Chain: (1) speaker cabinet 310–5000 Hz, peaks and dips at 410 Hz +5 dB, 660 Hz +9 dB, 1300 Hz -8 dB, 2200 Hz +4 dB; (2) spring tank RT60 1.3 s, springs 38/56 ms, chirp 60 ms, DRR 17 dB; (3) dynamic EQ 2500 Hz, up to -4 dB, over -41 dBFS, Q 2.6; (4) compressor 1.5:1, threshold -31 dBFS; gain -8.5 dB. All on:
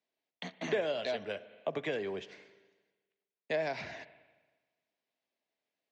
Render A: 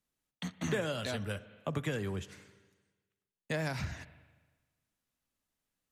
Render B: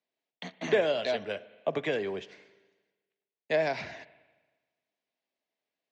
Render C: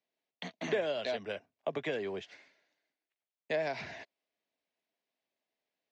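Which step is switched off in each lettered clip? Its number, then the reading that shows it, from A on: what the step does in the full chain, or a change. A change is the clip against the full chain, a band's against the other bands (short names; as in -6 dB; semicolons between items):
1, 125 Hz band +13.0 dB; 4, mean gain reduction 3.5 dB; 2, momentary loudness spread change -2 LU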